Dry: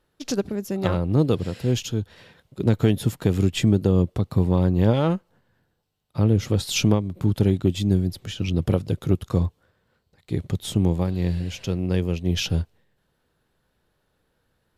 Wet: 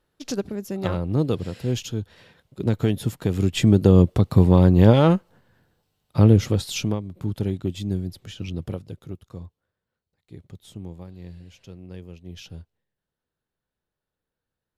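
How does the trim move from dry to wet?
3.32 s -2.5 dB
3.89 s +5 dB
6.31 s +5 dB
6.82 s -6 dB
8.44 s -6 dB
9.24 s -16.5 dB

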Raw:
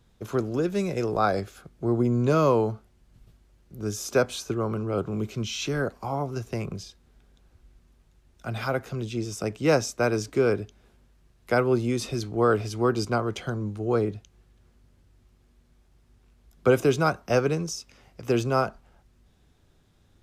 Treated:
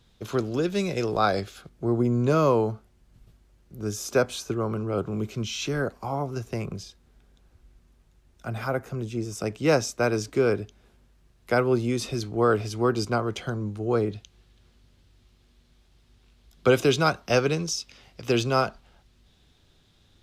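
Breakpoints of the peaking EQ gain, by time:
peaking EQ 3.7 kHz 1.3 oct
+8 dB
from 1.69 s 0 dB
from 8.48 s -7 dB
from 9.35 s +1.5 dB
from 14.11 s +10 dB

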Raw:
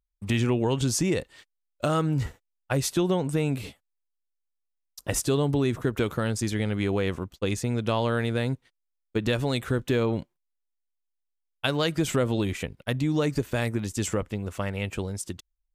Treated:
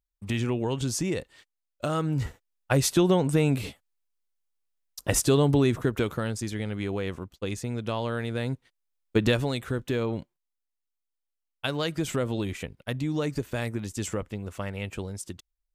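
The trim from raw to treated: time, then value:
1.90 s -3.5 dB
2.72 s +3 dB
5.58 s +3 dB
6.46 s -4.5 dB
8.26 s -4.5 dB
9.22 s +4.5 dB
9.56 s -3.5 dB

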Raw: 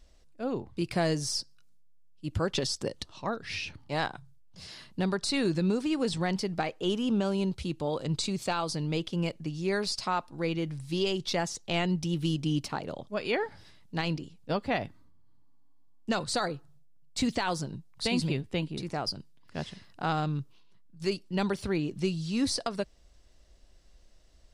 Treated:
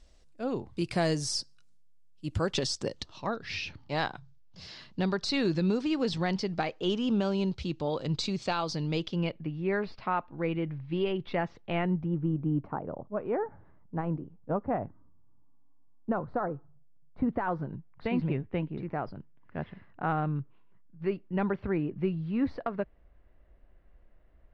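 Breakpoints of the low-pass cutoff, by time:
low-pass 24 dB/octave
2.39 s 10 kHz
3.28 s 5.9 kHz
9.05 s 5.9 kHz
9.50 s 2.5 kHz
11.67 s 2.5 kHz
12.25 s 1.3 kHz
17.25 s 1.3 kHz
17.73 s 2.1 kHz

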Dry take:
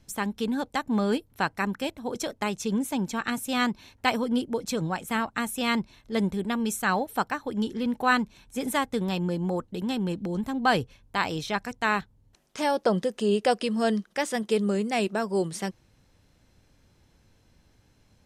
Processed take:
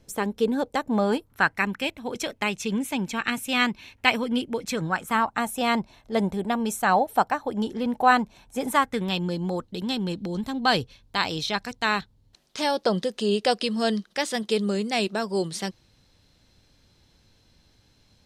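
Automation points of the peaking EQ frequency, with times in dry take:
peaking EQ +9.5 dB 0.9 oct
0.81 s 470 Hz
1.66 s 2.5 kHz
4.57 s 2.5 kHz
5.45 s 720 Hz
8.61 s 720 Hz
9.21 s 4.1 kHz

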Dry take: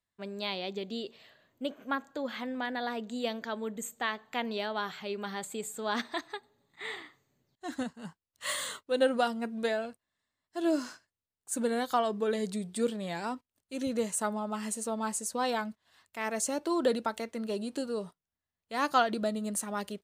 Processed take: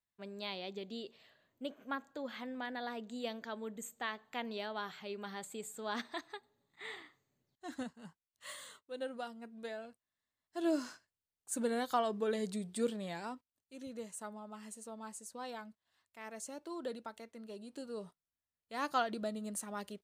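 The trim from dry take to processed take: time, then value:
7.87 s -7 dB
8.60 s -15 dB
9.50 s -15 dB
10.59 s -4.5 dB
12.98 s -4.5 dB
13.78 s -14 dB
17.63 s -14 dB
18.05 s -7.5 dB

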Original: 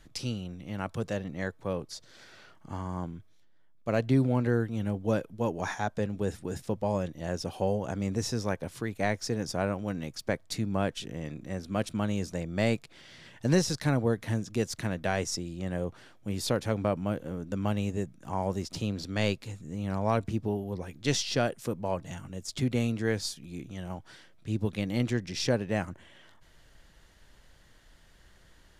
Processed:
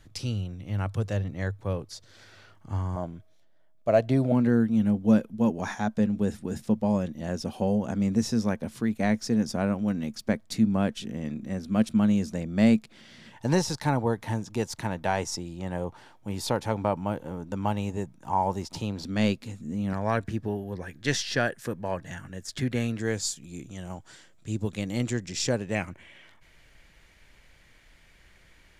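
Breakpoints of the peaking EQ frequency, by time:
peaking EQ +13.5 dB 0.35 oct
100 Hz
from 2.96 s 640 Hz
from 4.32 s 220 Hz
from 13.32 s 890 Hz
from 19.05 s 230 Hz
from 19.93 s 1.7 kHz
from 23.00 s 7.3 kHz
from 25.75 s 2.3 kHz

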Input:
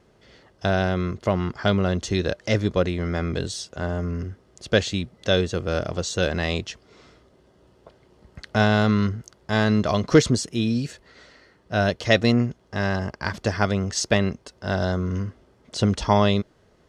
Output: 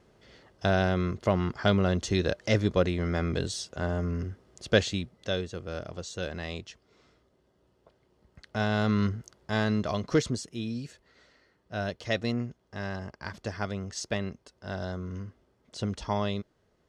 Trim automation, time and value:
4.80 s -3 dB
5.46 s -11.5 dB
8.46 s -11.5 dB
9.06 s -4 dB
10.52 s -11 dB

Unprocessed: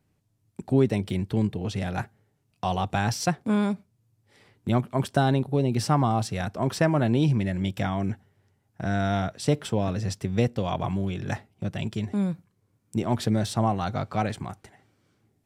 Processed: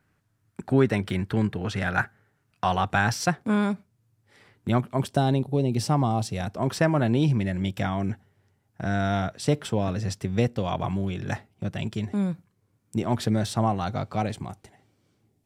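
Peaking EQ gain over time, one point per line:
peaking EQ 1.5 kHz 1 oct
2.66 s +13.5 dB
3.26 s +5 dB
4.74 s +5 dB
5.20 s -6.5 dB
6.30 s -6.5 dB
6.71 s +1.5 dB
13.65 s +1.5 dB
14.32 s -5.5 dB

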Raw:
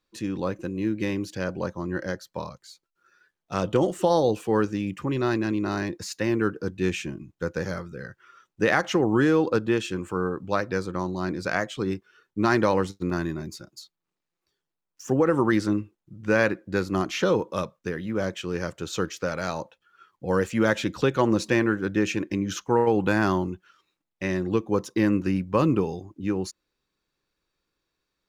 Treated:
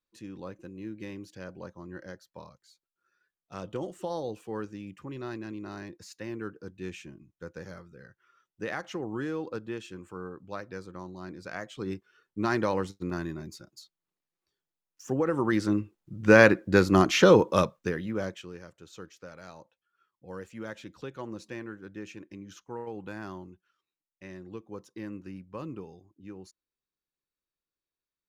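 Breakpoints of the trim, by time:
11.51 s -13 dB
11.93 s -6 dB
15.36 s -6 dB
16.30 s +5 dB
17.60 s +5 dB
18.30 s -6.5 dB
18.64 s -17.5 dB

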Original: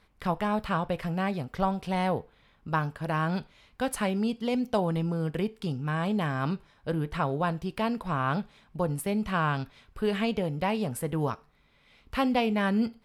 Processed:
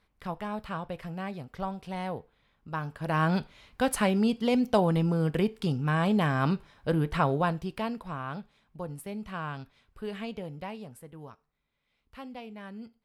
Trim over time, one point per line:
2.73 s -7 dB
3.24 s +3 dB
7.29 s +3 dB
8.28 s -9 dB
10.55 s -9 dB
11.11 s -17 dB

